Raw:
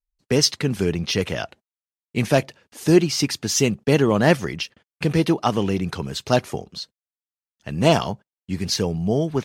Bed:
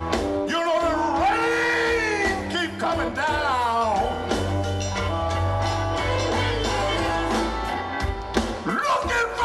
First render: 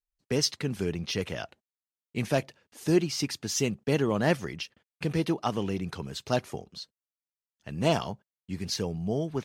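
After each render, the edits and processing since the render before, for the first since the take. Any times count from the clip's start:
level −8.5 dB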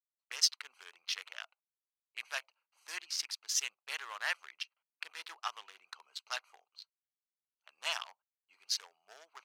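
adaptive Wiener filter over 25 samples
high-pass filter 1,200 Hz 24 dB per octave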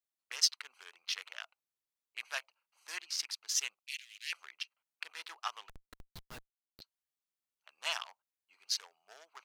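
0:03.79–0:04.33: elliptic high-pass filter 2,300 Hz, stop band 60 dB
0:05.69–0:06.81: comparator with hysteresis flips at −42 dBFS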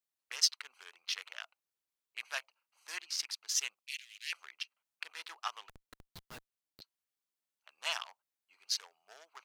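low-shelf EQ 61 Hz −9 dB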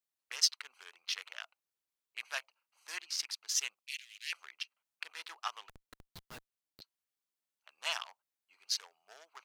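no processing that can be heard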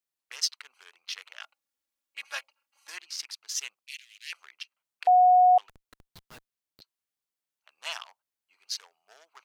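0:01.40–0:02.90: comb filter 3.6 ms, depth 100%
0:05.07–0:05.58: beep over 729 Hz −14.5 dBFS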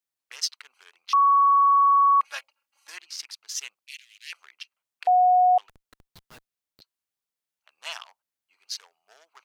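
0:01.13–0:02.21: beep over 1,120 Hz −14.5 dBFS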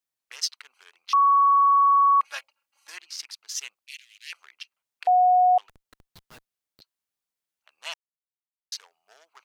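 0:07.94–0:08.72: silence

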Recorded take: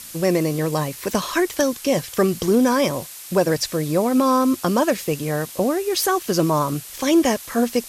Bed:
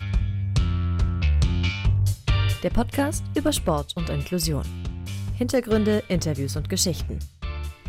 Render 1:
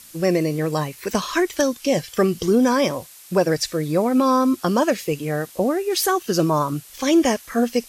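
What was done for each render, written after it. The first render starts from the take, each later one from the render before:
noise reduction from a noise print 7 dB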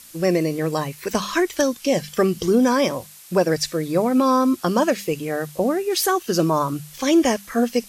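mains-hum notches 50/100/150/200 Hz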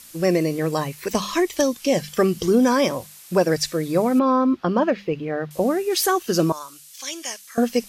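0:01.08–0:01.75: parametric band 1,500 Hz −11.5 dB 0.25 octaves
0:04.19–0:05.51: high-frequency loss of the air 300 metres
0:06.52–0:07.58: resonant band-pass 7,700 Hz, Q 0.56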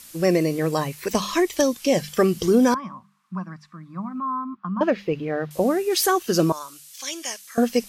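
0:02.74–0:04.81: pair of resonant band-passes 470 Hz, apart 2.5 octaves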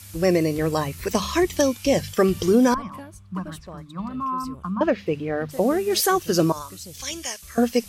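mix in bed −17.5 dB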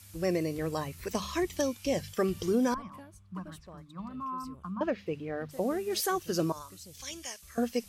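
level −10 dB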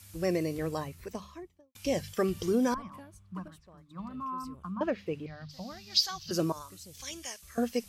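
0:00.53–0:01.75: fade out and dull
0:03.48–0:03.91: clip gain −7 dB
0:05.26–0:06.31: drawn EQ curve 170 Hz 0 dB, 420 Hz −28 dB, 630 Hz −11 dB, 1,000 Hz −7 dB, 1,700 Hz −8 dB, 2,600 Hz −3 dB, 4,800 Hz +13 dB, 9,400 Hz −19 dB, 15,000 Hz −7 dB

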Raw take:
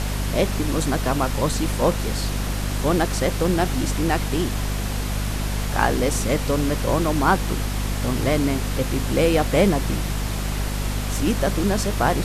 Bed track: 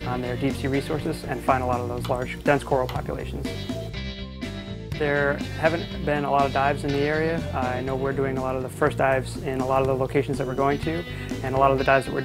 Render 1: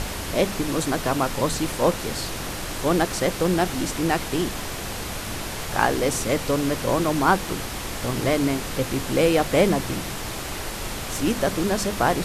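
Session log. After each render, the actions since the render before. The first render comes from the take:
mains-hum notches 50/100/150/200/250 Hz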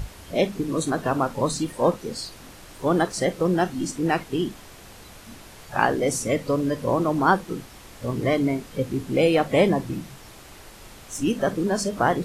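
noise reduction from a noise print 14 dB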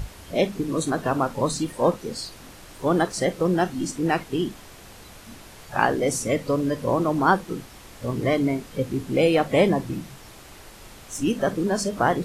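no processing that can be heard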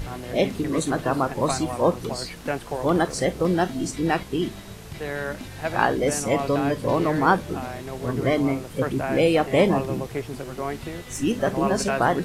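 mix in bed track −7.5 dB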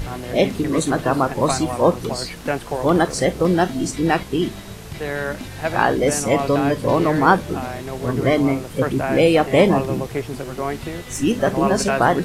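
level +4.5 dB
brickwall limiter −2 dBFS, peak gain reduction 2.5 dB

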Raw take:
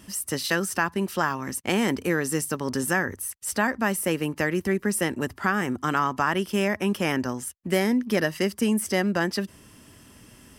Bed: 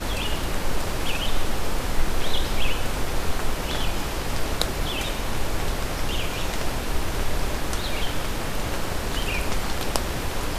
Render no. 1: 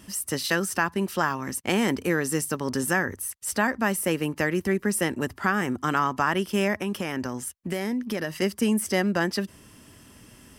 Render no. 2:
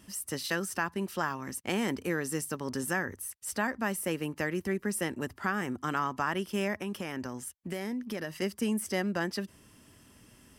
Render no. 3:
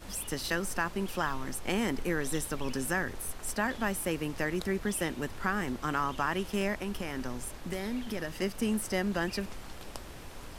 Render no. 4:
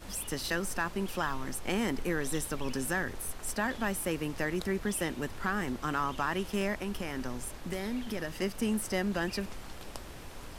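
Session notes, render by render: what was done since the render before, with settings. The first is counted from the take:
0:06.76–0:08.42: downward compressor, threshold −24 dBFS
level −7 dB
mix in bed −18.5 dB
soft clipping −17.5 dBFS, distortion −24 dB

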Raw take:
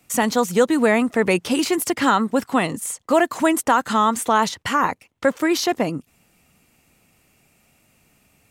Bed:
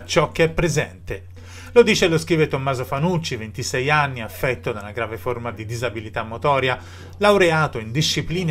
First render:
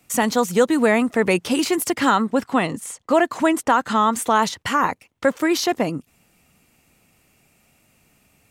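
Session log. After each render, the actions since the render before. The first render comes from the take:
0:02.22–0:04.13: high-shelf EQ 8,600 Hz −10.5 dB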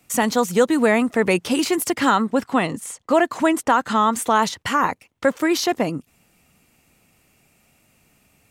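no processing that can be heard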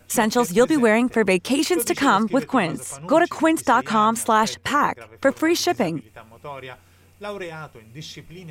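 mix in bed −17 dB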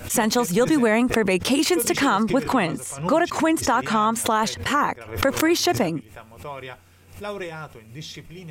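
brickwall limiter −10 dBFS, peak gain reduction 4.5 dB
background raised ahead of every attack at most 120 dB per second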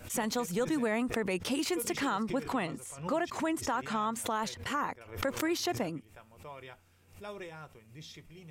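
level −12 dB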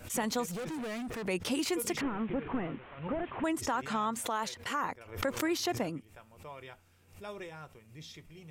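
0:00.49–0:01.27: gain into a clipping stage and back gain 36 dB
0:02.01–0:03.44: linear delta modulator 16 kbit/s, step −45 dBFS
0:04.21–0:04.84: low-shelf EQ 220 Hz −9.5 dB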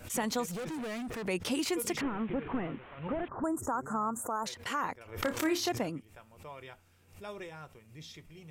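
0:03.28–0:04.46: elliptic band-stop filter 1,400–7,200 Hz, stop band 50 dB
0:05.10–0:05.69: flutter between parallel walls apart 4.9 metres, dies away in 0.2 s

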